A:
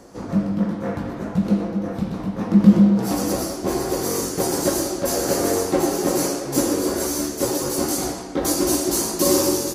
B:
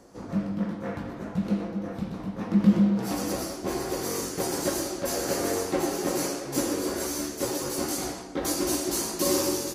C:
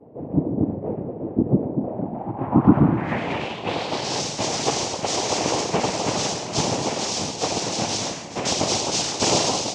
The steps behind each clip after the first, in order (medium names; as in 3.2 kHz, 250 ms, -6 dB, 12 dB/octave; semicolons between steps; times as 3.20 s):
dynamic bell 2.4 kHz, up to +5 dB, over -40 dBFS, Q 0.74; trim -7.5 dB
noise-vocoded speech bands 4; low-pass sweep 480 Hz -> 5.9 kHz, 1.75–4.22 s; reverse echo 148 ms -18 dB; trim +4 dB